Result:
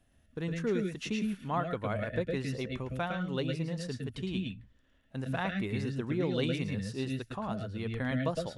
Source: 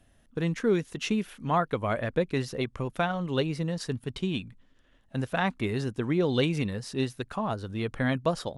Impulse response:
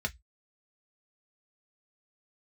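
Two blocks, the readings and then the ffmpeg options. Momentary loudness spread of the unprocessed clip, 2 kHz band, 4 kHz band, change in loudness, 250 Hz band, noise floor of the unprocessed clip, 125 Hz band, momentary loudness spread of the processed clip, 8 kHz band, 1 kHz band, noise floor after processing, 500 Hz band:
7 LU, -5.0 dB, -5.0 dB, -4.5 dB, -4.0 dB, -62 dBFS, -3.5 dB, 6 LU, -6.0 dB, -6.5 dB, -67 dBFS, -5.5 dB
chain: -filter_complex "[0:a]asplit=2[a][b];[b]asuperstop=centerf=940:order=4:qfactor=1.4[c];[1:a]atrim=start_sample=2205,adelay=108[d];[c][d]afir=irnorm=-1:irlink=0,volume=-6.5dB[e];[a][e]amix=inputs=2:normalize=0,volume=-7dB"

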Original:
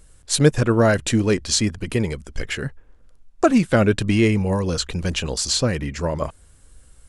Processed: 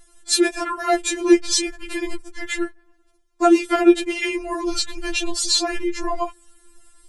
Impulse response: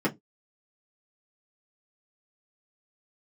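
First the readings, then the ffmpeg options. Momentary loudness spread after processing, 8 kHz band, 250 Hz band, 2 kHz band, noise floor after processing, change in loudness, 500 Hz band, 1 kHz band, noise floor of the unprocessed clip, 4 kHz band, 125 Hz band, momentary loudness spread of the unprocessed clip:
13 LU, +1.0 dB, 0.0 dB, 0.0 dB, -60 dBFS, -0.5 dB, -0.5 dB, +3.5 dB, -52 dBFS, +2.0 dB, under -25 dB, 11 LU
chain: -filter_complex "[0:a]aeval=exprs='val(0)*sin(2*PI*69*n/s)':c=same,asplit=2[a][b];[1:a]atrim=start_sample=2205[c];[b][c]afir=irnorm=-1:irlink=0,volume=-28dB[d];[a][d]amix=inputs=2:normalize=0,afftfilt=real='re*4*eq(mod(b,16),0)':imag='im*4*eq(mod(b,16),0)':win_size=2048:overlap=0.75,volume=6.5dB"

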